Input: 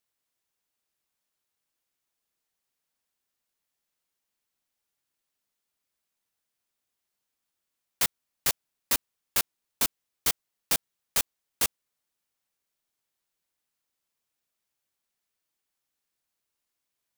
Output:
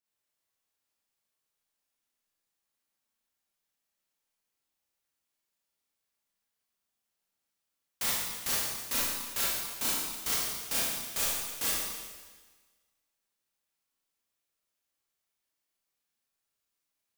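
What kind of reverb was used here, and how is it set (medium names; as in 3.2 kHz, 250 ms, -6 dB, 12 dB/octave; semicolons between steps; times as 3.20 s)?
Schroeder reverb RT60 1.4 s, combs from 28 ms, DRR -8 dB; trim -9.5 dB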